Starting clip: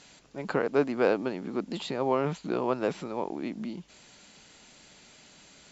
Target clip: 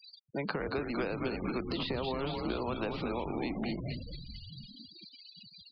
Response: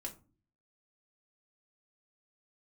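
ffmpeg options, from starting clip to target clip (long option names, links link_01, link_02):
-filter_complex "[0:a]bandreject=frequency=90.48:width_type=h:width=4,bandreject=frequency=180.96:width_type=h:width=4,bandreject=frequency=271.44:width_type=h:width=4,bandreject=frequency=361.92:width_type=h:width=4,bandreject=frequency=452.4:width_type=h:width=4,bandreject=frequency=542.88:width_type=h:width=4,bandreject=frequency=633.36:width_type=h:width=4,bandreject=frequency=723.84:width_type=h:width=4,bandreject=frequency=814.32:width_type=h:width=4,bandreject=frequency=904.8:width_type=h:width=4,bandreject=frequency=995.28:width_type=h:width=4,bandreject=frequency=1085.76:width_type=h:width=4,bandreject=frequency=1176.24:width_type=h:width=4,bandreject=frequency=1266.72:width_type=h:width=4,bandreject=frequency=1357.2:width_type=h:width=4,bandreject=frequency=1447.68:width_type=h:width=4,bandreject=frequency=1538.16:width_type=h:width=4,bandreject=frequency=1628.64:width_type=h:width=4,bandreject=frequency=1719.12:width_type=h:width=4,bandreject=frequency=1809.6:width_type=h:width=4,bandreject=frequency=1900.08:width_type=h:width=4,bandreject=frequency=1990.56:width_type=h:width=4,bandreject=frequency=2081.04:width_type=h:width=4,bandreject=frequency=2171.52:width_type=h:width=4,bandreject=frequency=2262:width_type=h:width=4,bandreject=frequency=2352.48:width_type=h:width=4,bandreject=frequency=2442.96:width_type=h:width=4,bandreject=frequency=2533.44:width_type=h:width=4,acompressor=threshold=-29dB:ratio=6,highshelf=frequency=2800:gain=11,asplit=8[link_01][link_02][link_03][link_04][link_05][link_06][link_07][link_08];[link_02]adelay=226,afreqshift=-93,volume=-6dB[link_09];[link_03]adelay=452,afreqshift=-186,volume=-11.5dB[link_10];[link_04]adelay=678,afreqshift=-279,volume=-17dB[link_11];[link_05]adelay=904,afreqshift=-372,volume=-22.5dB[link_12];[link_06]adelay=1130,afreqshift=-465,volume=-28.1dB[link_13];[link_07]adelay=1356,afreqshift=-558,volume=-33.6dB[link_14];[link_08]adelay=1582,afreqshift=-651,volume=-39.1dB[link_15];[link_01][link_09][link_10][link_11][link_12][link_13][link_14][link_15]amix=inputs=8:normalize=0,afftfilt=real='re*gte(hypot(re,im),0.01)':imag='im*gte(hypot(re,im),0.01)':win_size=1024:overlap=0.75,acrossover=split=89|270|2200[link_16][link_17][link_18][link_19];[link_16]acompressor=threshold=-54dB:ratio=4[link_20];[link_17]acompressor=threshold=-50dB:ratio=4[link_21];[link_18]acompressor=threshold=-44dB:ratio=4[link_22];[link_19]acompressor=threshold=-53dB:ratio=4[link_23];[link_20][link_21][link_22][link_23]amix=inputs=4:normalize=0,aresample=11025,aresample=44100,volume=8dB"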